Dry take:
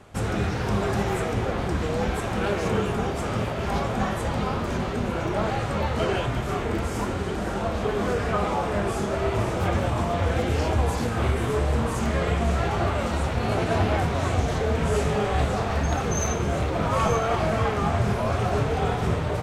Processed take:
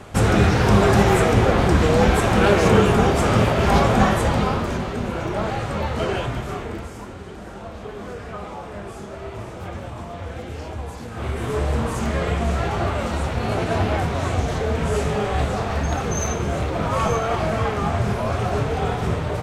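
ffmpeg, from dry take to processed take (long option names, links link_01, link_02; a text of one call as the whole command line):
ffmpeg -i in.wav -af "volume=19.5dB,afade=type=out:start_time=3.96:duration=0.87:silence=0.375837,afade=type=out:start_time=6.24:duration=0.74:silence=0.334965,afade=type=in:start_time=11.07:duration=0.55:silence=0.316228" out.wav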